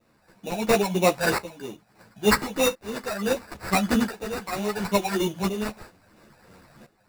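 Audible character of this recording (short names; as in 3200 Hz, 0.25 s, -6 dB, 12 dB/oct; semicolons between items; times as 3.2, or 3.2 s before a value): phasing stages 8, 3.1 Hz, lowest notch 320–4200 Hz; aliases and images of a low sample rate 3200 Hz, jitter 0%; tremolo saw up 0.73 Hz, depth 85%; a shimmering, thickened sound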